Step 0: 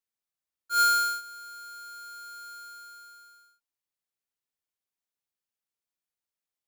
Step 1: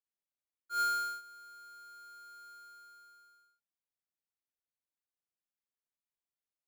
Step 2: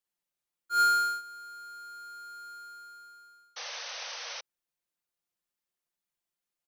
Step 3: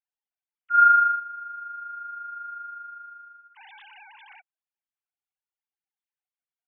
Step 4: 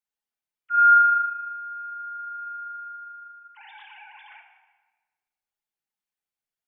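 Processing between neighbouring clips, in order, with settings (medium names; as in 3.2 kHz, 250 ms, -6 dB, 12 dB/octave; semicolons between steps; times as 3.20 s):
treble shelf 2.1 kHz -7.5 dB; trim -6.5 dB
comb 5.7 ms, depth 56%; painted sound noise, 3.56–4.41 s, 460–6300 Hz -44 dBFS; trim +4 dB
formants replaced by sine waves; trim +8 dB
simulated room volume 1300 m³, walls mixed, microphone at 1.4 m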